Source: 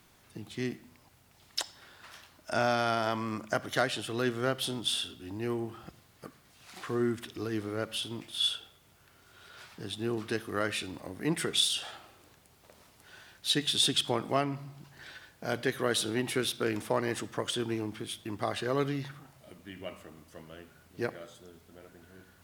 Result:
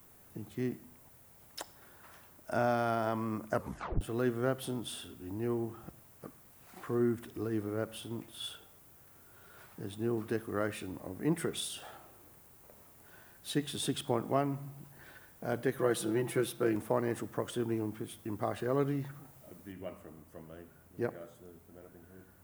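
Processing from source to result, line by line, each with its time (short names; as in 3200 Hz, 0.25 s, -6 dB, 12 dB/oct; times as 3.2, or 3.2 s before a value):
3.53 tape stop 0.48 s
15.78–16.76 comb 5.9 ms, depth 62%
19.72 noise floor step -57 dB -64 dB
whole clip: bell 4100 Hz -14.5 dB 2.3 oct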